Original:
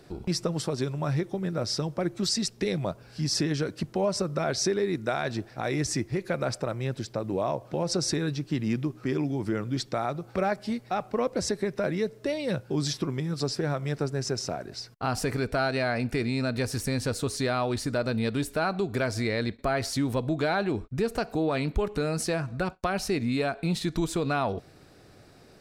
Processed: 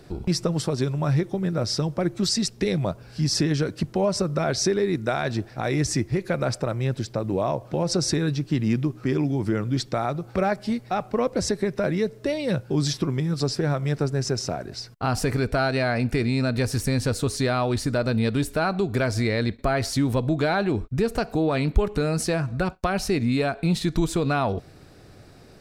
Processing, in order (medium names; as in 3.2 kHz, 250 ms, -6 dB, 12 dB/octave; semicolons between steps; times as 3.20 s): bass shelf 140 Hz +6.5 dB; trim +3 dB